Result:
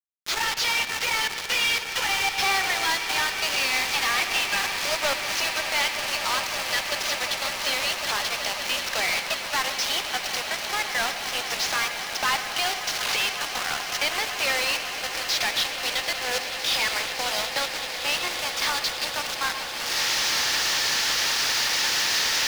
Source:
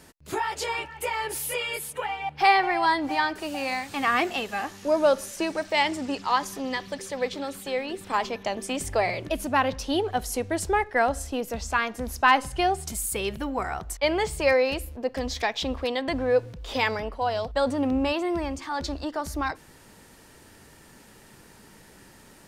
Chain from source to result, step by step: CVSD 32 kbps; recorder AGC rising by 48 dB/s; HPF 340 Hz 24 dB/oct; differentiator; notch 1000 Hz, Q 27; companded quantiser 2-bit; overdrive pedal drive 14 dB, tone 4600 Hz, clips at -24 dBFS; swelling echo 0.186 s, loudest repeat 8, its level -15 dB; on a send at -11 dB: reverb RT60 0.95 s, pre-delay 91 ms; on the sum: gain +5 dB

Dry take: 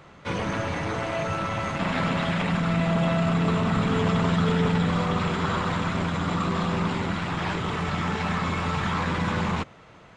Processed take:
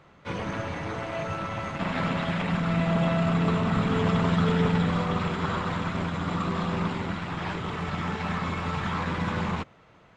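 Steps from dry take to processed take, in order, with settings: high shelf 6500 Hz -6.5 dB; upward expander 1.5:1, over -32 dBFS

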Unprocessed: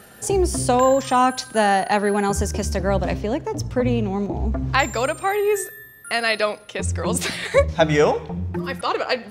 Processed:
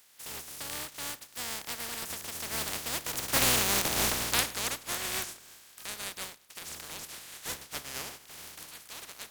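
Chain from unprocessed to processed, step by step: spectral contrast lowered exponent 0.15; Doppler pass-by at 3.69, 41 m/s, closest 17 m; mismatched tape noise reduction encoder only; gain -3.5 dB

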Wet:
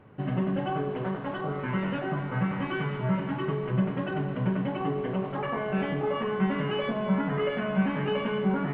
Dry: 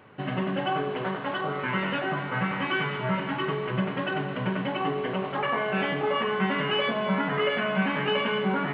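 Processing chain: tilt -3 dB/oct; gain -5 dB

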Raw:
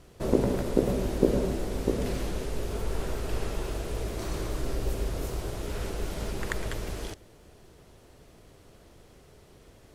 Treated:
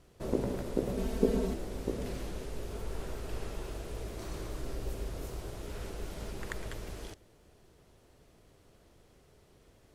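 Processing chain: 0.97–1.54 comb 4.5 ms, depth 100%; gain -7.5 dB

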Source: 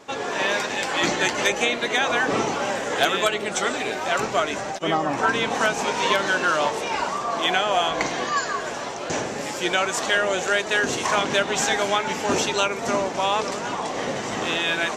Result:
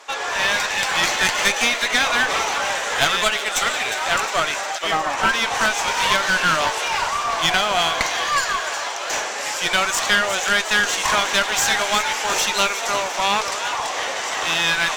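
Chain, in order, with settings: HPF 860 Hz 12 dB/oct; one-sided clip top -28 dBFS; thin delay 0.357 s, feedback 57%, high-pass 1900 Hz, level -9.5 dB; gain +7 dB

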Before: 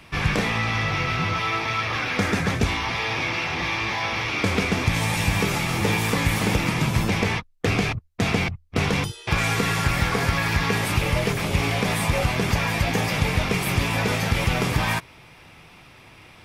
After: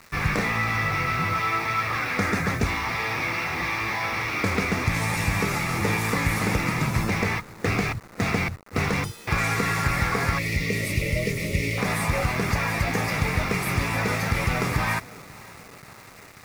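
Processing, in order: spectral delete 10.38–11.78, 650–1800 Hz; tape echo 0.535 s, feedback 87%, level -20 dB, low-pass 1400 Hz; bit-crush 7-bit; thirty-one-band EQ 1250 Hz +5 dB, 2000 Hz +5 dB, 3150 Hz -9 dB; gain -2.5 dB

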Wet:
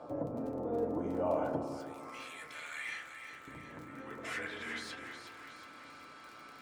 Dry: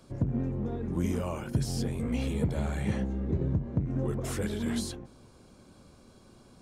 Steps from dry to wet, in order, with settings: 1.58–3.48 pre-emphasis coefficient 0.97; compressor 4:1, threshold -40 dBFS, peak gain reduction 15 dB; buzz 120 Hz, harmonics 11, -64 dBFS 0 dB/oct; band-pass sweep 650 Hz -> 2000 Hz, 1.81–2.47; crackle 14/s -55 dBFS; on a send: split-band echo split 1000 Hz, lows 0.159 s, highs 0.363 s, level -8.5 dB; on the sum: FDN reverb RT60 0.53 s, low-frequency decay 1.55×, high-frequency decay 0.4×, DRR 2 dB; slew limiter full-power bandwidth 9.1 Hz; gain +15 dB

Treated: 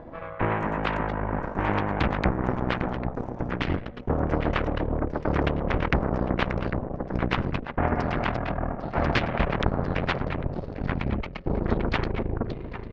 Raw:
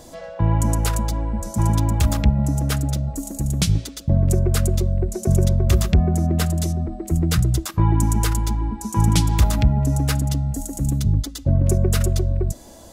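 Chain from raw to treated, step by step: gliding pitch shift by -9 st starting unshifted; LPF 1900 Hz 24 dB/oct; on a send: feedback echo 0.799 s, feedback 25%, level -12 dB; on the sum: added harmonics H 3 -13 dB, 5 -37 dB, 6 -16 dB, 7 -31 dB, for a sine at -5 dBFS; spectral compressor 2:1; gain -2 dB

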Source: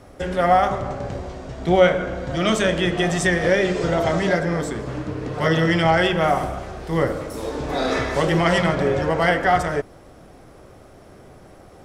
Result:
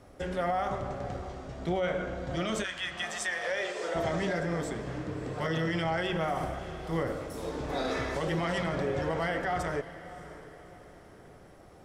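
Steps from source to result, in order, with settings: 2.63–3.94 HPF 1200 Hz -> 390 Hz 24 dB/oct; limiter -13.5 dBFS, peak gain reduction 10 dB; diffused feedback echo 0.621 s, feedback 41%, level -15 dB; gain -8.5 dB

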